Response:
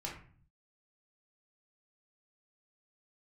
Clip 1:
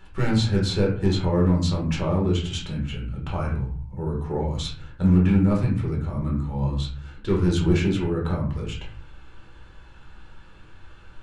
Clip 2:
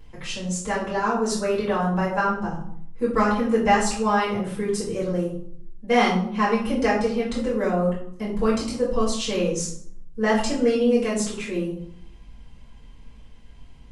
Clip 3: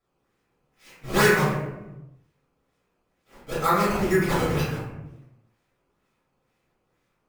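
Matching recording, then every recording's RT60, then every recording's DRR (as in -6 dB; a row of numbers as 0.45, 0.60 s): 1; 0.45, 0.65, 1.0 s; -3.5, -8.0, -11.5 dB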